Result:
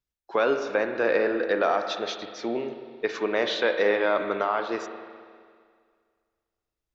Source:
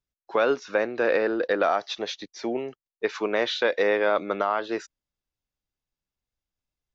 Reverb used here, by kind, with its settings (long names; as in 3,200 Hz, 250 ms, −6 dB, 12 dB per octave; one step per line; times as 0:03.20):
spring reverb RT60 2 s, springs 39/51 ms, chirp 25 ms, DRR 6.5 dB
level −1 dB